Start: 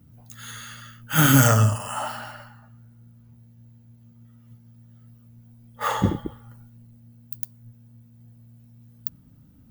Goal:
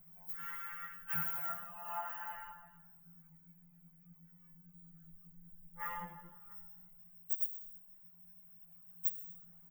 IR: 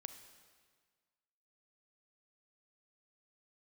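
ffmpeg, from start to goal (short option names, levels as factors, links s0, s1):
-filter_complex "[0:a]asettb=1/sr,asplit=3[s0][s1][s2];[s0]atrim=end=2.304[s3];[s1]atrim=start=2.3:end=6,asetpts=PTS-STARTPTS,afade=t=in:d=0.004:c=qsin,afade=t=out:st=3.696:d=0.004:c=qsin,asubboost=boost=11:cutoff=200[s4];[s2]atrim=start=5.996[s5];[s3][s4]acrossfade=d=0.004:c1=hsin:c2=qsin[s6];[s6][s5]acrossfade=d=0.004:c1=qsin:c2=hsin,acompressor=threshold=0.0141:ratio=4,firequalizer=gain_entry='entry(120,0);entry(270,-29);entry(610,-1);entry(1200,-2);entry(2300,0);entry(3800,-29);entry(10000,-18);entry(15000,9)':delay=0.05:min_phase=1[s7];[1:a]atrim=start_sample=2205,afade=t=out:st=0.41:d=0.01,atrim=end_sample=18522[s8];[s7][s8]afir=irnorm=-1:irlink=0,afftfilt=real='re*2.83*eq(mod(b,8),0)':imag='im*2.83*eq(mod(b,8),0)':win_size=2048:overlap=0.75,volume=1.88"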